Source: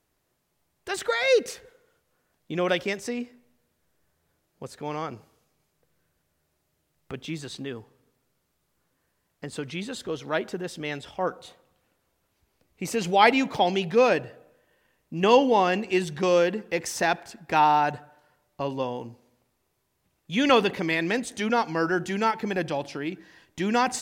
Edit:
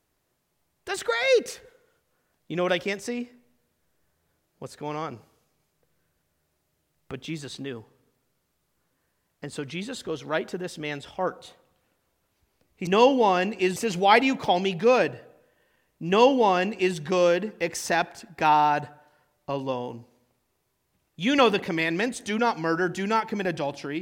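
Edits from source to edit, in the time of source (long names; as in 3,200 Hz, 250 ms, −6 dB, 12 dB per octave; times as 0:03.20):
0:15.18–0:16.07: duplicate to 0:12.87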